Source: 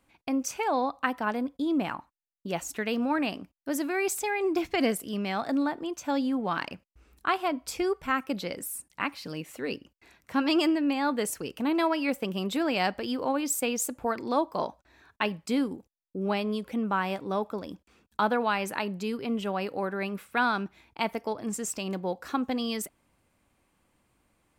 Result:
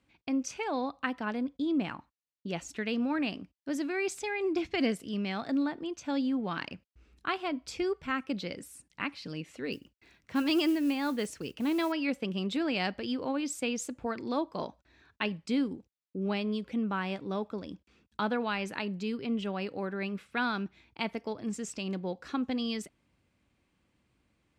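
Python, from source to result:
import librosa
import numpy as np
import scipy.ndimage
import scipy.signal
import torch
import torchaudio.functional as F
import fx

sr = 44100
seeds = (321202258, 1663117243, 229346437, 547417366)

y = scipy.signal.sosfilt(scipy.signal.butter(2, 5100.0, 'lowpass', fs=sr, output='sos'), x)
y = fx.mod_noise(y, sr, seeds[0], snr_db=28, at=(9.72, 11.92))
y = scipy.signal.sosfilt(scipy.signal.butter(2, 43.0, 'highpass', fs=sr, output='sos'), y)
y = fx.peak_eq(y, sr, hz=870.0, db=-8.0, octaves=2.0)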